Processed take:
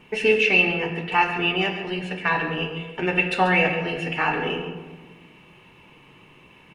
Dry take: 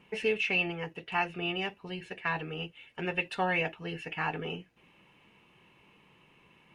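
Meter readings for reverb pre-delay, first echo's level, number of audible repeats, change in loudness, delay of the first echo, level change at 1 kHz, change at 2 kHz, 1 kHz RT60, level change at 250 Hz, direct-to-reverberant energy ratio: 3 ms, -12.5 dB, 1, +11.0 dB, 137 ms, +11.0 dB, +11.0 dB, 1.3 s, +11.0 dB, 2.0 dB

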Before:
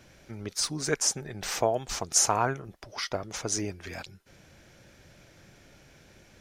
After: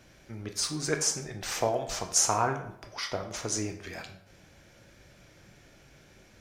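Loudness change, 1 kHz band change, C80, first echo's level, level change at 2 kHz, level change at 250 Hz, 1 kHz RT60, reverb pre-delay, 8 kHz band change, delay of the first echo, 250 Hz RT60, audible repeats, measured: -1.0 dB, -0.5 dB, 12.5 dB, no echo, -1.0 dB, -0.5 dB, 0.70 s, 11 ms, -1.0 dB, no echo, 0.70 s, no echo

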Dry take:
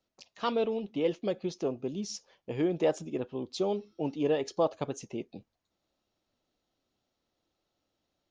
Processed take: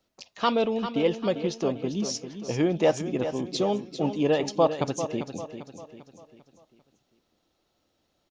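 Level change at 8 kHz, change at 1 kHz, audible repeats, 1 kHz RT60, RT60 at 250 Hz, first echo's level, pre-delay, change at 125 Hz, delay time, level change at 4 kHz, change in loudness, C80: no reading, +7.5 dB, 4, no reverb, no reverb, -10.0 dB, no reverb, +7.5 dB, 396 ms, +8.0 dB, +5.5 dB, no reverb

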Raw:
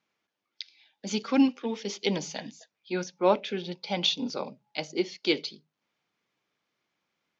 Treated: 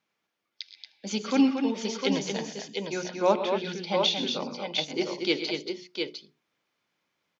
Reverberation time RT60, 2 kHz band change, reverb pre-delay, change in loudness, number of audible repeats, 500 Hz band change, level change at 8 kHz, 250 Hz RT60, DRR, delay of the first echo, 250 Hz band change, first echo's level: no reverb, +2.0 dB, no reverb, +1.0 dB, 4, +2.0 dB, no reading, no reverb, no reverb, 101 ms, +1.5 dB, -17.0 dB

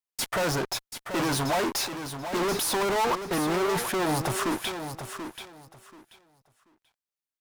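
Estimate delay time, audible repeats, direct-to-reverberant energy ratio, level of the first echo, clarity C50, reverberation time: 734 ms, 2, no reverb, -9.0 dB, no reverb, no reverb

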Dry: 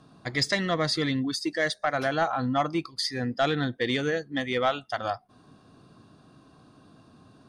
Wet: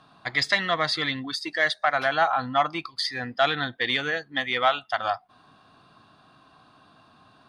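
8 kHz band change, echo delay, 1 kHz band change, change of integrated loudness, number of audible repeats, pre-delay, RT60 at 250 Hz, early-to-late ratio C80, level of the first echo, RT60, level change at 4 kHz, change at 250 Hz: -4.0 dB, no echo, +4.5 dB, +2.5 dB, no echo, no reverb, no reverb, no reverb, no echo, no reverb, +3.5 dB, -6.5 dB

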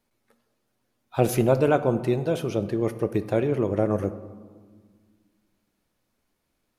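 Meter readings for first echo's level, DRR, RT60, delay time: no echo, 11.0 dB, 1.6 s, no echo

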